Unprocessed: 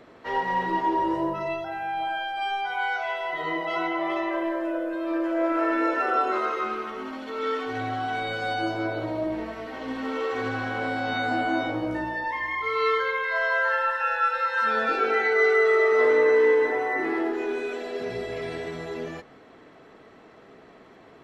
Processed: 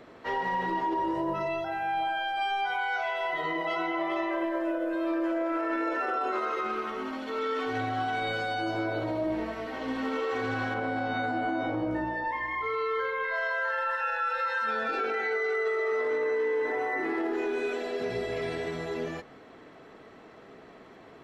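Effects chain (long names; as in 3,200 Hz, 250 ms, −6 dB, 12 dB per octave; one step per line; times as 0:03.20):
0:10.74–0:13.34: high-shelf EQ 2,300 Hz −10 dB
brickwall limiter −22 dBFS, peak gain reduction 11 dB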